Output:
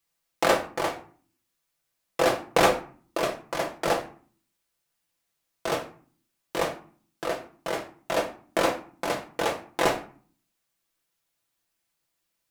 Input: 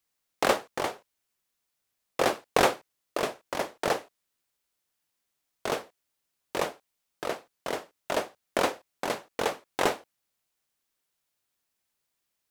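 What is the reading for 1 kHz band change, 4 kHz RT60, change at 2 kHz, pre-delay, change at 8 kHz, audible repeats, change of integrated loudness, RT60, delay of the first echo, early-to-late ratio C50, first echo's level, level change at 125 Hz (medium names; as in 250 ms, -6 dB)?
+2.5 dB, 0.25 s, +2.5 dB, 6 ms, +1.5 dB, no echo, +2.5 dB, 0.45 s, no echo, 11.5 dB, no echo, +5.0 dB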